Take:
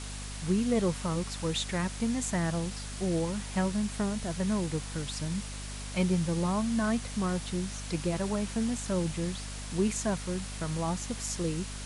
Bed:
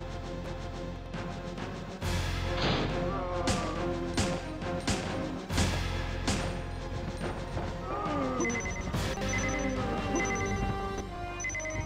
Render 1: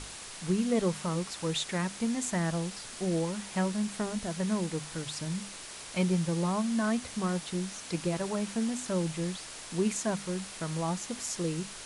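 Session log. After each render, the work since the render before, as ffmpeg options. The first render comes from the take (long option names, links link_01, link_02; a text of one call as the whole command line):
ffmpeg -i in.wav -af "bandreject=frequency=50:width_type=h:width=6,bandreject=frequency=100:width_type=h:width=6,bandreject=frequency=150:width_type=h:width=6,bandreject=frequency=200:width_type=h:width=6,bandreject=frequency=250:width_type=h:width=6" out.wav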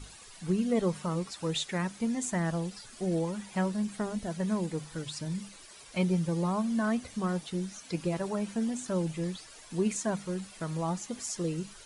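ffmpeg -i in.wav -af "afftdn=noise_reduction=12:noise_floor=-44" out.wav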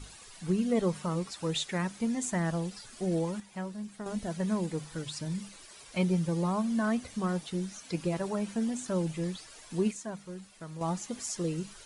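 ffmpeg -i in.wav -filter_complex "[0:a]asplit=5[link_01][link_02][link_03][link_04][link_05];[link_01]atrim=end=3.402[link_06];[link_02]atrim=start=3.398:end=4.062,asetpts=PTS-STARTPTS,volume=-8dB[link_07];[link_03]atrim=start=4.058:end=9.912[link_08];[link_04]atrim=start=9.908:end=10.812,asetpts=PTS-STARTPTS,volume=-8dB[link_09];[link_05]atrim=start=10.808[link_10];[link_06][link_07]acrossfade=duration=0.004:curve1=hsin:curve2=hsin[link_11];[link_11][link_08]acrossfade=duration=0.004:curve1=hsin:curve2=hsin[link_12];[link_12][link_09]acrossfade=duration=0.004:curve1=hsin:curve2=hsin[link_13];[link_13][link_10]acrossfade=duration=0.004:curve1=hsin:curve2=hsin" out.wav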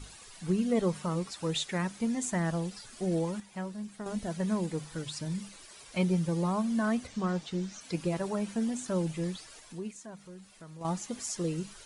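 ffmpeg -i in.wav -filter_complex "[0:a]asettb=1/sr,asplit=3[link_01][link_02][link_03];[link_01]atrim=end=7.074[link_04];[link_02]atrim=start=7.07:end=7.81,asetpts=PTS-STARTPTS,afade=type=in:duration=0.004:curve=qsin,afade=type=out:start_time=0.736:duration=0.004:curve=qsin,lowpass=frequency=7400:width=0.5412,lowpass=frequency=7400:width=1.3066[link_05];[link_03]atrim=start=7.806[link_06];[link_04][link_05]acrossfade=duration=0.004:curve1=hsin:curve2=qsin[link_07];[link_07][link_06]acrossfade=duration=0.004:curve1=qsin:curve2=hsin,asettb=1/sr,asplit=3[link_08][link_09][link_10];[link_08]atrim=end=9.594[link_11];[link_09]atrim=start=9.59:end=10.85,asetpts=PTS-STARTPTS,afade=type=in:duration=0.004:curve=qsin,afade=type=out:start_time=1.256:duration=0.004:curve=qsin,acompressor=threshold=-53dB:ratio=1.5:attack=3.2:release=140:knee=1:detection=peak[link_12];[link_10]atrim=start=10.846[link_13];[link_11][link_12]acrossfade=duration=0.004:curve1=hsin:curve2=qsin[link_14];[link_14][link_13]acrossfade=duration=0.004:curve1=qsin:curve2=hsin" out.wav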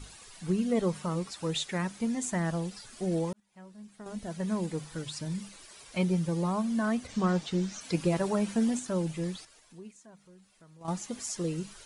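ffmpeg -i in.wav -filter_complex "[0:a]asplit=6[link_01][link_02][link_03][link_04][link_05][link_06];[link_01]atrim=end=3.33,asetpts=PTS-STARTPTS,afade=type=out:start_time=3.326:duration=0.004:curve=hsin[link_07];[link_02]atrim=start=3.33:end=7.092,asetpts=PTS-STARTPTS,afade=type=in:duration=1.32[link_08];[link_03]atrim=start=7.088:end=8.792,asetpts=PTS-STARTPTS,volume=4dB[link_09];[link_04]atrim=start=8.788:end=9.452[link_10];[link_05]atrim=start=9.448:end=10.882,asetpts=PTS-STARTPTS,volume=-8dB[link_11];[link_06]atrim=start=10.878[link_12];[link_07][link_08]concat=n=2:v=0:a=1[link_13];[link_13][link_09]acrossfade=duration=0.004:curve1=hsin:curve2=hsin[link_14];[link_14][link_10]acrossfade=duration=0.004:curve1=hsin:curve2=hsin[link_15];[link_15][link_11]acrossfade=duration=0.004:curve1=hsin:curve2=hsin[link_16];[link_16][link_12]acrossfade=duration=0.004:curve1=hsin:curve2=hsin" out.wav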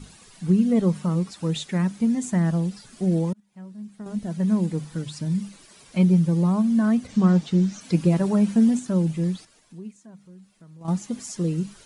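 ffmpeg -i in.wav -af "equalizer=frequency=190:width_type=o:width=1.5:gain=11" out.wav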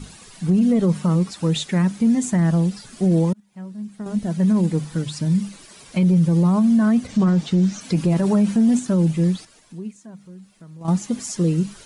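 ffmpeg -i in.wav -af "acontrast=47,alimiter=limit=-11dB:level=0:latency=1:release=29" out.wav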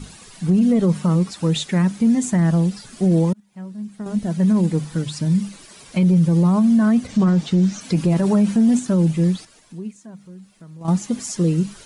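ffmpeg -i in.wav -af "volume=1dB" out.wav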